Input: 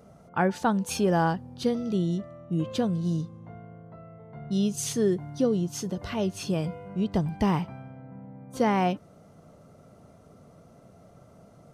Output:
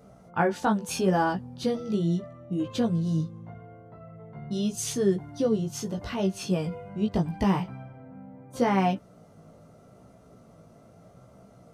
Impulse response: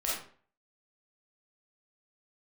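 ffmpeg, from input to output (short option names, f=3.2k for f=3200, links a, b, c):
-af "flanger=delay=15.5:depth=3.5:speed=0.79,volume=3dB"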